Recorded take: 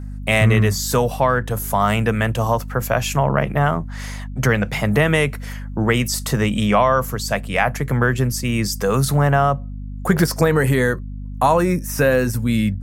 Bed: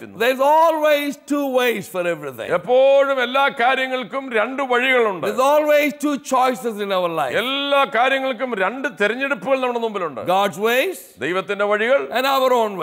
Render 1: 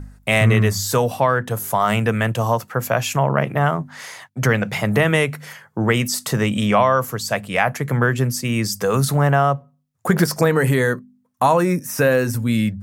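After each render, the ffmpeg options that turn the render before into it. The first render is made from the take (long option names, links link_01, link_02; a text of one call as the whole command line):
ffmpeg -i in.wav -af "bandreject=frequency=50:width_type=h:width=4,bandreject=frequency=100:width_type=h:width=4,bandreject=frequency=150:width_type=h:width=4,bandreject=frequency=200:width_type=h:width=4,bandreject=frequency=250:width_type=h:width=4" out.wav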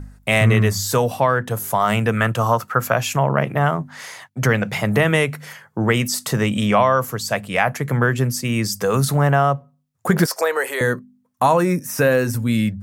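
ffmpeg -i in.wav -filter_complex "[0:a]asettb=1/sr,asplit=3[link_01][link_02][link_03];[link_01]atrim=end=2.174[link_04];[link_02]atrim=start=2.17:end=2.93,asetpts=PTS-STARTPTS,afade=type=in:duration=0.004:curve=qsin,afade=type=out:start_time=0.756:duration=0.004:curve=qsin,equalizer=frequency=1300:width=3.1:gain=10.5[link_05];[link_03]atrim=start=2.926[link_06];[link_04][link_05]acrossfade=duration=0.004:curve1=hsin:curve2=qsin[link_07];[link_07][link_06]acrossfade=duration=0.004:curve1=qsin:curve2=hsin,asettb=1/sr,asplit=3[link_08][link_09][link_10];[link_08]atrim=end=10.264[link_11];[link_09]atrim=start=10.26:end=10.81,asetpts=PTS-STARTPTS,afade=type=in:duration=0.004:curve=qsin,afade=type=out:start_time=0.546:duration=0.004:curve=qsin,highpass=frequency=470:width=0.5412,highpass=frequency=470:width=1.3066[link_12];[link_10]atrim=start=10.806[link_13];[link_11][link_12]acrossfade=duration=0.004:curve1=hsin:curve2=qsin[link_14];[link_14][link_13]acrossfade=duration=0.004:curve1=qsin:curve2=hsin" out.wav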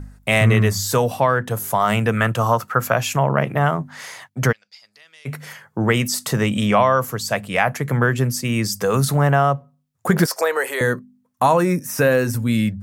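ffmpeg -i in.wav -filter_complex "[0:a]asplit=3[link_01][link_02][link_03];[link_01]afade=type=out:start_time=4.51:duration=0.02[link_04];[link_02]bandpass=frequency=4800:width_type=q:width=13,afade=type=in:start_time=4.51:duration=0.02,afade=type=out:start_time=5.25:duration=0.02[link_05];[link_03]afade=type=in:start_time=5.25:duration=0.02[link_06];[link_04][link_05][link_06]amix=inputs=3:normalize=0" out.wav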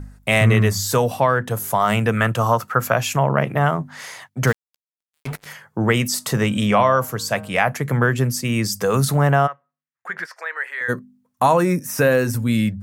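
ffmpeg -i in.wav -filter_complex "[0:a]asettb=1/sr,asplit=3[link_01][link_02][link_03];[link_01]atrim=end=4.474[link_04];[link_02]atrim=start=4.47:end=5.46,asetpts=PTS-STARTPTS,afade=type=in:duration=0.004:curve=qsin,afade=type=out:start_time=0.986:duration=0.004:curve=qsin,acrusher=bits=4:mix=0:aa=0.5[link_05];[link_03]atrim=start=5.456[link_06];[link_04][link_05]acrossfade=duration=0.004:curve1=hsin:curve2=qsin[link_07];[link_07][link_06]acrossfade=duration=0.004:curve1=qsin:curve2=hsin,asettb=1/sr,asplit=3[link_08][link_09][link_10];[link_08]atrim=end=6.054[link_11];[link_09]atrim=start=6.05:end=7.62,asetpts=PTS-STARTPTS,afade=type=in:duration=0.004:curve=qsin,afade=type=out:start_time=1.566:duration=0.004:curve=qsin,bandreject=frequency=156.4:width_type=h:width=4,bandreject=frequency=312.8:width_type=h:width=4,bandreject=frequency=469.2:width_type=h:width=4,bandreject=frequency=625.6:width_type=h:width=4,bandreject=frequency=782:width_type=h:width=4,bandreject=frequency=938.4:width_type=h:width=4,bandreject=frequency=1094.8:width_type=h:width=4,bandreject=frequency=1251.2:width_type=h:width=4,bandreject=frequency=1407.6:width_type=h:width=4,bandreject=frequency=1564:width_type=h:width=4[link_12];[link_10]atrim=start=7.616[link_13];[link_11][link_12]acrossfade=duration=0.004:curve1=hsin:curve2=qsin[link_14];[link_14][link_13]acrossfade=duration=0.004:curve1=qsin:curve2=hsin,asplit=3[link_15][link_16][link_17];[link_15]afade=type=out:start_time=9.46:duration=0.02[link_18];[link_16]bandpass=frequency=1800:width_type=q:width=2.9,afade=type=in:start_time=9.46:duration=0.02,afade=type=out:start_time=10.88:duration=0.02[link_19];[link_17]afade=type=in:start_time=10.88:duration=0.02[link_20];[link_18][link_19][link_20]amix=inputs=3:normalize=0" out.wav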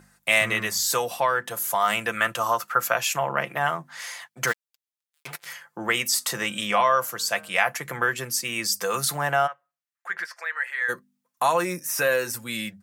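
ffmpeg -i in.wav -af "highpass=frequency=1400:poles=1,aecho=1:1:5.8:0.44" out.wav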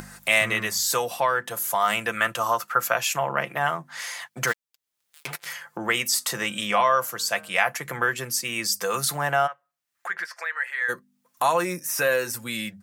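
ffmpeg -i in.wav -af "acompressor=mode=upward:threshold=-28dB:ratio=2.5" out.wav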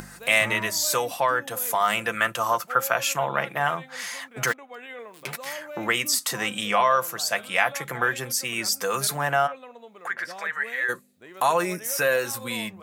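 ffmpeg -i in.wav -i bed.wav -filter_complex "[1:a]volume=-24dB[link_01];[0:a][link_01]amix=inputs=2:normalize=0" out.wav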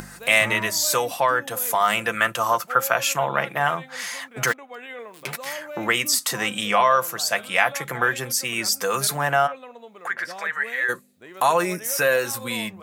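ffmpeg -i in.wav -af "volume=2.5dB" out.wav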